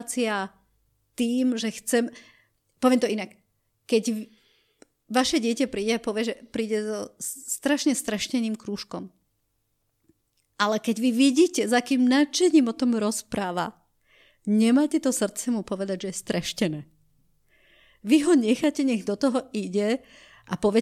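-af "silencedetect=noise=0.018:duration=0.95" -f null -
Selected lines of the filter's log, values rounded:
silence_start: 9.06
silence_end: 10.60 | silence_duration: 1.54
silence_start: 16.81
silence_end: 18.05 | silence_duration: 1.23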